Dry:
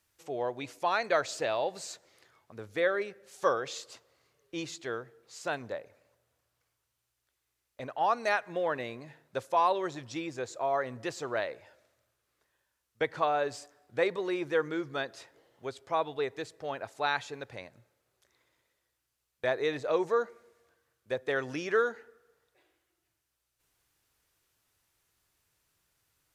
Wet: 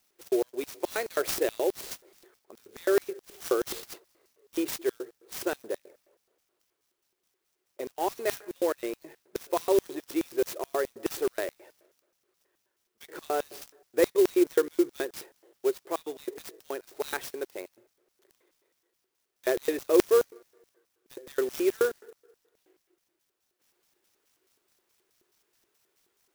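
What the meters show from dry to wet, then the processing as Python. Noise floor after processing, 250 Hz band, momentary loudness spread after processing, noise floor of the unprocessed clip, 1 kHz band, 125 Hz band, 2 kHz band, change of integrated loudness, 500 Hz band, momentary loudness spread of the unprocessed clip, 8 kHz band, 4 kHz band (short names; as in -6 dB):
-79 dBFS, +7.5 dB, 16 LU, -82 dBFS, -6.0 dB, n/a, -4.5 dB, +2.5 dB, +4.0 dB, 14 LU, +7.0 dB, +0.5 dB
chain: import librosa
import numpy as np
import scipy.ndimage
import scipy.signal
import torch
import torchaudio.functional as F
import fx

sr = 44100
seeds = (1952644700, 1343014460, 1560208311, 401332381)

y = fx.dynamic_eq(x, sr, hz=820.0, q=1.6, threshold_db=-43.0, ratio=4.0, max_db=-5)
y = fx.filter_lfo_highpass(y, sr, shape='square', hz=4.7, low_hz=370.0, high_hz=5700.0, q=6.8)
y = fx.clock_jitter(y, sr, seeds[0], jitter_ms=0.042)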